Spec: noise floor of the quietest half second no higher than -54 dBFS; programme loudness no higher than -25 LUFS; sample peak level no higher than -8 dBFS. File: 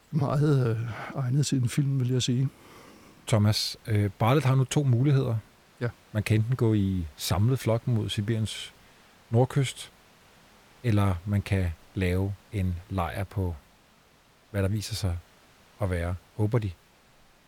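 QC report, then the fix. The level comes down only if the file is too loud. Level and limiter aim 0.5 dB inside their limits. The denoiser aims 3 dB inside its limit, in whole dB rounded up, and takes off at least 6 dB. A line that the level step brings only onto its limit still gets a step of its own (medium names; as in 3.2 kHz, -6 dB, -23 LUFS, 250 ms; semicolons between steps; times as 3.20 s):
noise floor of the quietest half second -60 dBFS: pass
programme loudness -27.5 LUFS: pass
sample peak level -13.0 dBFS: pass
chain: none needed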